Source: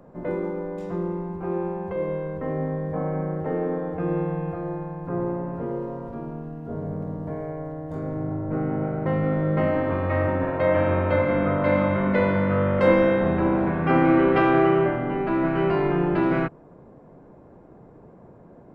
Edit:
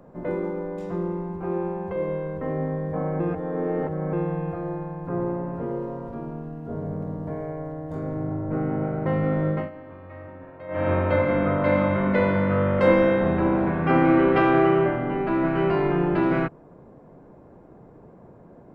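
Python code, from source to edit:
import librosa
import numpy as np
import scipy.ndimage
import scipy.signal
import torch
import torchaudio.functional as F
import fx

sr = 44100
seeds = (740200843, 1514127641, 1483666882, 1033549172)

y = fx.edit(x, sr, fx.reverse_span(start_s=3.2, length_s=0.93),
    fx.fade_down_up(start_s=9.48, length_s=1.42, db=-18.0, fade_s=0.22), tone=tone)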